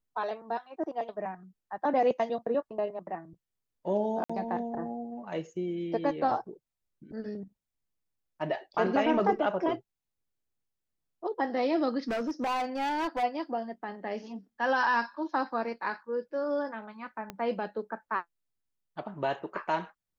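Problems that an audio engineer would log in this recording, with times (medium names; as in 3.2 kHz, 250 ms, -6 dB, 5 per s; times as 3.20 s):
4.24–4.29 s: dropout 55 ms
12.08–13.24 s: clipped -27.5 dBFS
17.30 s: pop -22 dBFS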